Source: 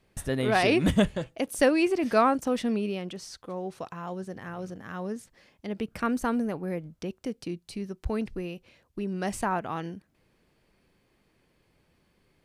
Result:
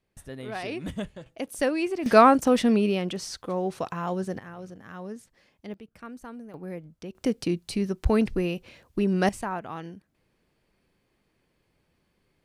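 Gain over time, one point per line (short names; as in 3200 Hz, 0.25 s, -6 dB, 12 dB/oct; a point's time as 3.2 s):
-11 dB
from 1.26 s -3.5 dB
from 2.06 s +6.5 dB
from 4.39 s -4 dB
from 5.74 s -14 dB
from 6.54 s -4.5 dB
from 7.15 s +8 dB
from 9.29 s -3.5 dB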